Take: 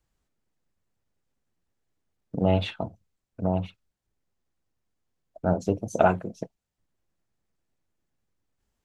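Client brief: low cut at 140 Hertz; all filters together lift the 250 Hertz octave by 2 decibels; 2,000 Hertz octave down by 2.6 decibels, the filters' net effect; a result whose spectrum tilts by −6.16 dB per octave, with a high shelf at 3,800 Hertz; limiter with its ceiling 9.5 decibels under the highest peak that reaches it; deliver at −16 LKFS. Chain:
high-pass filter 140 Hz
parametric band 250 Hz +4.5 dB
parametric band 2,000 Hz −6 dB
high-shelf EQ 3,800 Hz +5.5 dB
level +14.5 dB
brickwall limiter 0 dBFS

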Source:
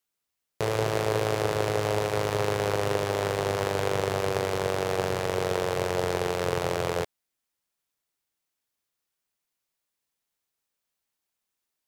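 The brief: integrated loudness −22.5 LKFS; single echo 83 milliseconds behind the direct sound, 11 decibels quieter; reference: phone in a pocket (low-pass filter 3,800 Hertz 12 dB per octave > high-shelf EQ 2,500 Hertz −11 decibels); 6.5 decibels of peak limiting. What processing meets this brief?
brickwall limiter −16.5 dBFS
low-pass filter 3,800 Hz 12 dB per octave
high-shelf EQ 2,500 Hz −11 dB
single-tap delay 83 ms −11 dB
level +9 dB

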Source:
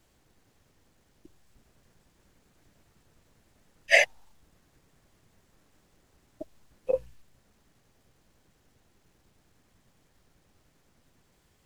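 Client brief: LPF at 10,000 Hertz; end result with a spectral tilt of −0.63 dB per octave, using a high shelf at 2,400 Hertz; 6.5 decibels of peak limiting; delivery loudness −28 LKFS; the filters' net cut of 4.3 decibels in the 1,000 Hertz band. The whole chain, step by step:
low-pass filter 10,000 Hz
parametric band 1,000 Hz −9 dB
high-shelf EQ 2,400 Hz +3.5 dB
level +0.5 dB
brickwall limiter −12 dBFS

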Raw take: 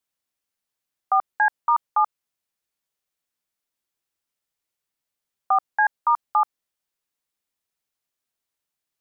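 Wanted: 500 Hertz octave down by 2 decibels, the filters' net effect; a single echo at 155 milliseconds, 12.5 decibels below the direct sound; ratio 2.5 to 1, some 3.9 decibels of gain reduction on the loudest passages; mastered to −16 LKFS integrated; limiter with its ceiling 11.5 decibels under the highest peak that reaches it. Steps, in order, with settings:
parametric band 500 Hz −3.5 dB
downward compressor 2.5 to 1, threshold −21 dBFS
brickwall limiter −23.5 dBFS
single-tap delay 155 ms −12.5 dB
level +19 dB

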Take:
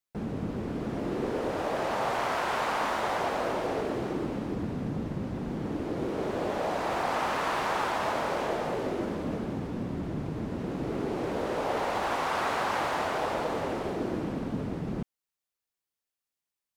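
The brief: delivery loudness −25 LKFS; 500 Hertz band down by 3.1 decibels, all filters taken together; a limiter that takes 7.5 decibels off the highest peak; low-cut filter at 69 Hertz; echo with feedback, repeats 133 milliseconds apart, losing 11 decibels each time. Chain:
high-pass filter 69 Hz
parametric band 500 Hz −4 dB
brickwall limiter −25.5 dBFS
repeating echo 133 ms, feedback 28%, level −11 dB
level +9.5 dB

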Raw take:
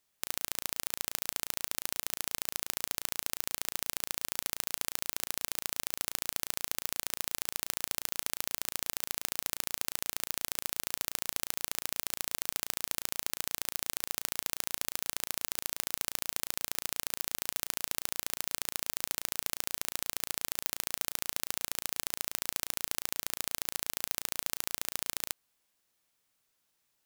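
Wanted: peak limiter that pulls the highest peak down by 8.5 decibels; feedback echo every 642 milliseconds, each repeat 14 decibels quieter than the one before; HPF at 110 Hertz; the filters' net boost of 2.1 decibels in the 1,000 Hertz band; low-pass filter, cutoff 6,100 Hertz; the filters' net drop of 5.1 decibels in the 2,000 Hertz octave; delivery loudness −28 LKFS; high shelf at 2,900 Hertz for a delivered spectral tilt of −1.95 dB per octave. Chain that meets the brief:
high-pass filter 110 Hz
low-pass filter 6,100 Hz
parametric band 1,000 Hz +5 dB
parametric band 2,000 Hz −4.5 dB
high-shelf EQ 2,900 Hz −8.5 dB
brickwall limiter −26 dBFS
repeating echo 642 ms, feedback 20%, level −14 dB
level +23 dB

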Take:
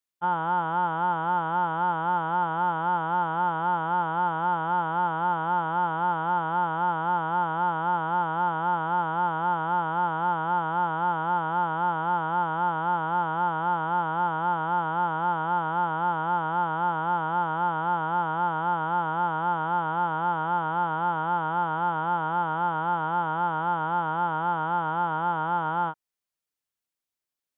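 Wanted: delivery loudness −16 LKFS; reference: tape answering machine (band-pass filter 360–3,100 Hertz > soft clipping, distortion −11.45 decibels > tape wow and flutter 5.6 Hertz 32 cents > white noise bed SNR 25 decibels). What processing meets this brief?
band-pass filter 360–3,100 Hz
soft clipping −25 dBFS
tape wow and flutter 5.6 Hz 32 cents
white noise bed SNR 25 dB
level +14 dB

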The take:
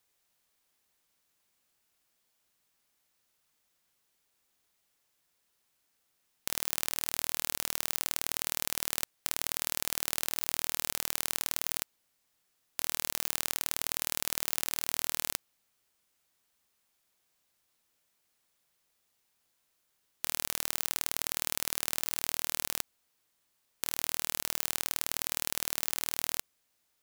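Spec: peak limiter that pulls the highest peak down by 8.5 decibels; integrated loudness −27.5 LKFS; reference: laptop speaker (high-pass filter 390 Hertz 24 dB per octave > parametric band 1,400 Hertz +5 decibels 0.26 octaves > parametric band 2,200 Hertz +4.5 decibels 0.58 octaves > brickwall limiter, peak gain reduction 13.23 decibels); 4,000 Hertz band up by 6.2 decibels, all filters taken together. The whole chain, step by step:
parametric band 4,000 Hz +7 dB
brickwall limiter −9.5 dBFS
high-pass filter 390 Hz 24 dB per octave
parametric band 1,400 Hz +5 dB 0.26 octaves
parametric band 2,200 Hz +4.5 dB 0.58 octaves
level +22 dB
brickwall limiter −1 dBFS

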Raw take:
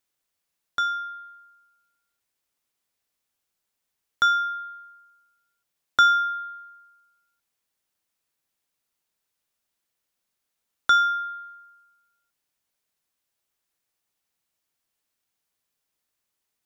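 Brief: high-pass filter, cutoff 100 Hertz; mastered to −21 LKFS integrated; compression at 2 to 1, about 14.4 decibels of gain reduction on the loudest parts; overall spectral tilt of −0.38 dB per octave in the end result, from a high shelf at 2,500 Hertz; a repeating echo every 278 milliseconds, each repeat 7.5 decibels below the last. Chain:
high-pass filter 100 Hz
high-shelf EQ 2,500 Hz −3.5 dB
downward compressor 2 to 1, threshold −42 dBFS
repeating echo 278 ms, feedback 42%, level −7.5 dB
level +15.5 dB

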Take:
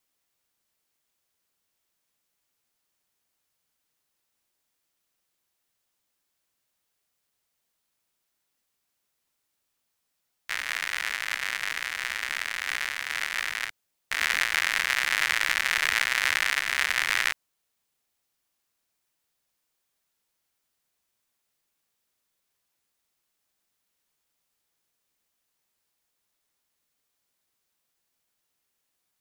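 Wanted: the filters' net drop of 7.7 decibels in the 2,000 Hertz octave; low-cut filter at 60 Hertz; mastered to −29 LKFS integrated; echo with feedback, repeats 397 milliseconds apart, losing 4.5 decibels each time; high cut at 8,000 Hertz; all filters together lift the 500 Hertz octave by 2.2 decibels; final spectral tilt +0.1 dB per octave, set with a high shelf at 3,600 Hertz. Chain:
high-pass filter 60 Hz
low-pass filter 8,000 Hz
parametric band 500 Hz +3.5 dB
parametric band 2,000 Hz −7.5 dB
high-shelf EQ 3,600 Hz −7 dB
repeating echo 397 ms, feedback 60%, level −4.5 dB
level +3 dB

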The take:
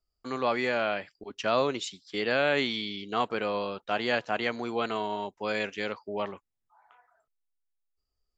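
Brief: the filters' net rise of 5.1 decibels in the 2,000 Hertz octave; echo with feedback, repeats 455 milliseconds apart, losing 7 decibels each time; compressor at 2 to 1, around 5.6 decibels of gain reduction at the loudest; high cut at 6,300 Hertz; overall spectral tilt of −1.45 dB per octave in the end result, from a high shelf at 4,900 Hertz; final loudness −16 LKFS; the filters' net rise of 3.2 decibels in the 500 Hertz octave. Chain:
low-pass filter 6,300 Hz
parametric band 500 Hz +3.5 dB
parametric band 2,000 Hz +7 dB
high-shelf EQ 4,900 Hz −4 dB
downward compressor 2 to 1, threshold −28 dBFS
repeating echo 455 ms, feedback 45%, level −7 dB
level +14 dB

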